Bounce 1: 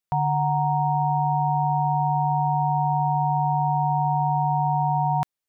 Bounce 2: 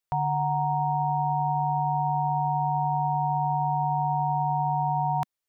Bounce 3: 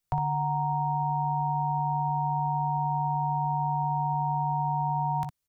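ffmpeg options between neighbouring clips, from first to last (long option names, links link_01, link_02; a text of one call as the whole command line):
ffmpeg -i in.wav -af "equalizer=frequency=210:width=2.7:gain=-8.5,alimiter=limit=-18.5dB:level=0:latency=1:release=14" out.wav
ffmpeg -i in.wav -filter_complex "[0:a]bass=frequency=250:gain=14,treble=frequency=4000:gain=4,acrossover=split=180|650[link_01][link_02][link_03];[link_01]acompressor=threshold=-35dB:ratio=4[link_04];[link_02]acompressor=threshold=-35dB:ratio=4[link_05];[link_03]acompressor=threshold=-32dB:ratio=4[link_06];[link_04][link_05][link_06]amix=inputs=3:normalize=0,aecho=1:1:16|59:0.237|0.422" out.wav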